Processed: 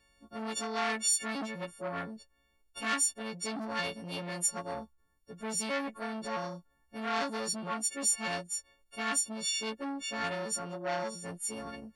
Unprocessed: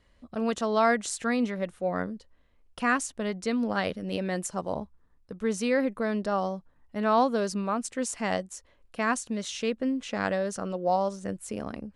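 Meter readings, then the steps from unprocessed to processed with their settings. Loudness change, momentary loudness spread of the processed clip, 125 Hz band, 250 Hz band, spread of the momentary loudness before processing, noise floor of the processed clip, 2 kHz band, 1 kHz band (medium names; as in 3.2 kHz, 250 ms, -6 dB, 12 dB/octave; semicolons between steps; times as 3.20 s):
-4.5 dB, 13 LU, -8.0 dB, -10.0 dB, 12 LU, -71 dBFS, -4.5 dB, -7.5 dB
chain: partials quantised in pitch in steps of 4 st; transformer saturation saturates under 2.2 kHz; trim -6 dB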